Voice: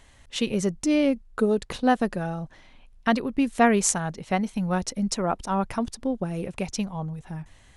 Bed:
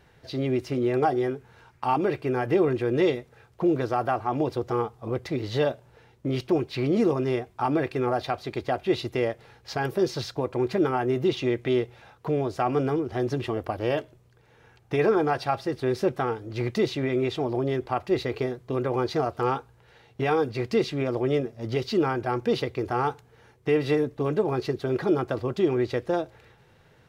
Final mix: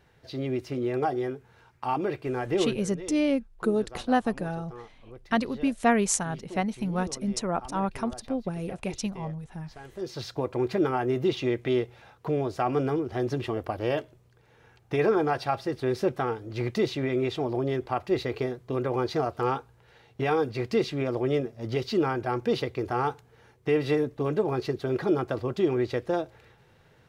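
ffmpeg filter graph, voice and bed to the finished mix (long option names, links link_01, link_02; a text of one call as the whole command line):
ffmpeg -i stem1.wav -i stem2.wav -filter_complex "[0:a]adelay=2250,volume=-3dB[link_01];[1:a]volume=12.5dB,afade=type=out:start_time=2.62:duration=0.21:silence=0.199526,afade=type=in:start_time=9.93:duration=0.43:silence=0.149624[link_02];[link_01][link_02]amix=inputs=2:normalize=0" out.wav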